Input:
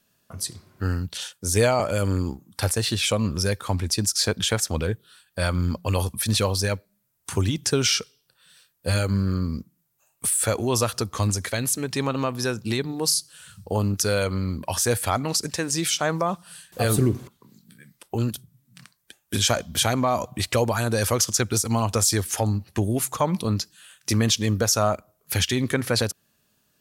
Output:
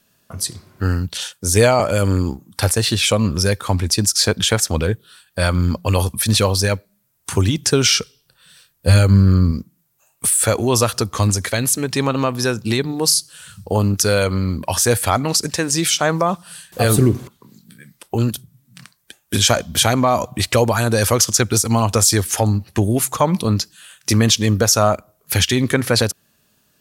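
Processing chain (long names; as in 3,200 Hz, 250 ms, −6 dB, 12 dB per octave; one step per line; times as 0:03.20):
0:08.00–0:09.52: low-shelf EQ 130 Hz +9.5 dB
level +6.5 dB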